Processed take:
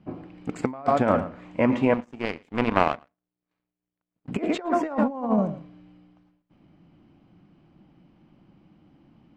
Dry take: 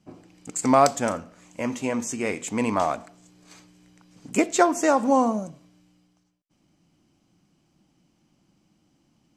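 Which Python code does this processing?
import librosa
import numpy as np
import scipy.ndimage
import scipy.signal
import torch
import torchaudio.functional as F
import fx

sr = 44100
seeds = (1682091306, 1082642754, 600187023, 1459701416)

y = fx.air_absorb(x, sr, metres=430.0)
y = y + 10.0 ** (-14.0 / 20.0) * np.pad(y, (int(113 * sr / 1000.0), 0))[:len(y)]
y = fx.power_curve(y, sr, exponent=2.0, at=(1.94, 4.28))
y = fx.over_compress(y, sr, threshold_db=-27.0, ratio=-0.5)
y = y * librosa.db_to_amplitude(5.0)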